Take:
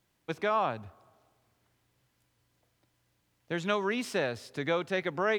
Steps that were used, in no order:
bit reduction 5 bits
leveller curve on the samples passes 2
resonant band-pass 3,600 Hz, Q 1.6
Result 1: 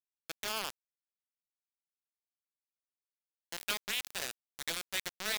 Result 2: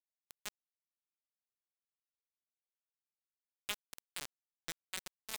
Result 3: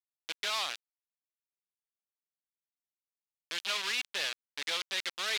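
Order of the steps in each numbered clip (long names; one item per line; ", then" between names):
leveller curve on the samples, then resonant band-pass, then bit reduction
resonant band-pass, then bit reduction, then leveller curve on the samples
bit reduction, then leveller curve on the samples, then resonant band-pass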